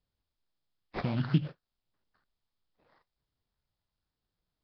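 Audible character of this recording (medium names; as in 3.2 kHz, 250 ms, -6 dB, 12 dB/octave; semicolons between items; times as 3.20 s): phasing stages 8, 0.72 Hz, lowest notch 430–4200 Hz; aliases and images of a low sample rate 3 kHz, jitter 20%; Nellymoser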